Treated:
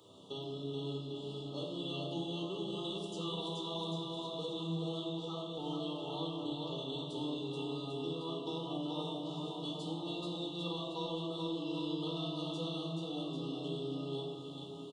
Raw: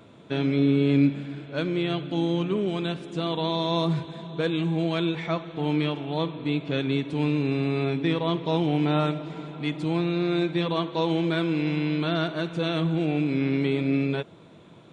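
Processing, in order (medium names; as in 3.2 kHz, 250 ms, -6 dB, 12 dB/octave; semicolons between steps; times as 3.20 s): high-pass 99 Hz; treble shelf 2.9 kHz +9.5 dB; chord resonator C2 major, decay 0.35 s; compression, threshold -43 dBFS, peak gain reduction 14.5 dB; brick-wall FIR band-stop 1.3–2.7 kHz; bass shelf 430 Hz -6.5 dB; bouncing-ball echo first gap 430 ms, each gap 0.85×, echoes 5; simulated room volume 3200 m³, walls furnished, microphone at 4.1 m; trim +3.5 dB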